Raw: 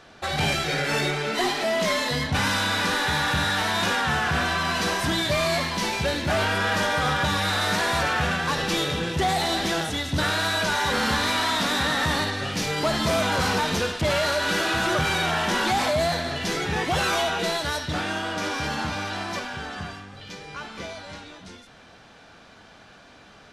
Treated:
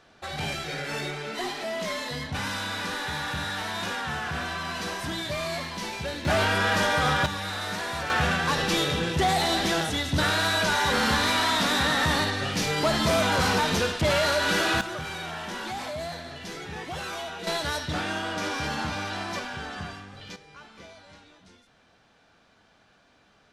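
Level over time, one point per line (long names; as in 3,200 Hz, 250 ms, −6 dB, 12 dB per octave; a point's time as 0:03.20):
−7.5 dB
from 0:06.25 0 dB
from 0:07.26 −8 dB
from 0:08.10 0 dB
from 0:14.81 −11 dB
from 0:17.47 −2 dB
from 0:20.36 −11.5 dB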